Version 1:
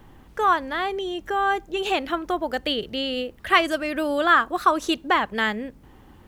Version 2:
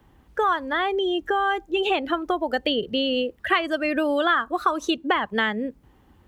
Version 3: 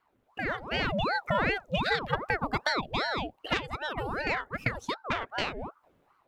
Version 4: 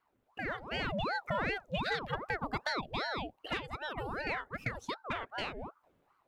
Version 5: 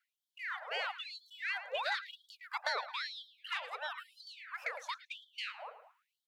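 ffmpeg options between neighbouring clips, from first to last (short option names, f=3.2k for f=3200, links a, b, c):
-filter_complex "[0:a]afftdn=nr=14:nf=-31,highpass=48,acrossover=split=130|2600[a][b][c];[a]acompressor=threshold=-58dB:ratio=4[d];[b]acompressor=threshold=-28dB:ratio=4[e];[c]acompressor=threshold=-38dB:ratio=4[f];[d][e][f]amix=inputs=3:normalize=0,volume=7dB"
-af "aeval=exprs='0.473*(cos(1*acos(clip(val(0)/0.473,-1,1)))-cos(1*PI/2))+0.075*(cos(3*acos(clip(val(0)/0.473,-1,1)))-cos(3*PI/2))':c=same,dynaudnorm=f=250:g=5:m=11.5dB,aeval=exprs='val(0)*sin(2*PI*700*n/s+700*0.75/2.6*sin(2*PI*2.6*n/s))':c=same,volume=-7.5dB"
-af "asoftclip=type=tanh:threshold=-17dB,volume=-5dB"
-filter_complex "[0:a]asplit=2[a][b];[b]adelay=109,lowpass=f=2.4k:p=1,volume=-11dB,asplit=2[c][d];[d]adelay=109,lowpass=f=2.4k:p=1,volume=0.53,asplit=2[e][f];[f]adelay=109,lowpass=f=2.4k:p=1,volume=0.53,asplit=2[g][h];[h]adelay=109,lowpass=f=2.4k:p=1,volume=0.53,asplit=2[i][j];[j]adelay=109,lowpass=f=2.4k:p=1,volume=0.53,asplit=2[k][l];[l]adelay=109,lowpass=f=2.4k:p=1,volume=0.53[m];[c][e][g][i][k][m]amix=inputs=6:normalize=0[n];[a][n]amix=inputs=2:normalize=0,afftfilt=real='re*gte(b*sr/1024,420*pow(3100/420,0.5+0.5*sin(2*PI*1*pts/sr)))':imag='im*gte(b*sr/1024,420*pow(3100/420,0.5+0.5*sin(2*PI*1*pts/sr)))':win_size=1024:overlap=0.75"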